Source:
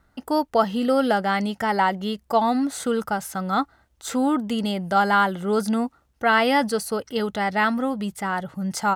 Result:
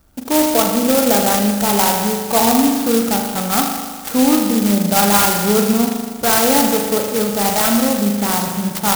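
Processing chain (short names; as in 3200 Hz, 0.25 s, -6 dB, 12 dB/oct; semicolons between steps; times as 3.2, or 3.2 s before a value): Wiener smoothing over 9 samples; bell 3600 Hz +7.5 dB 0.45 oct; in parallel at +3 dB: limiter -17 dBFS, peak gain reduction 10.5 dB; on the sum: spring tank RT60 1.6 s, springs 39 ms, chirp 25 ms, DRR 1.5 dB; clock jitter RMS 0.14 ms; gain -1 dB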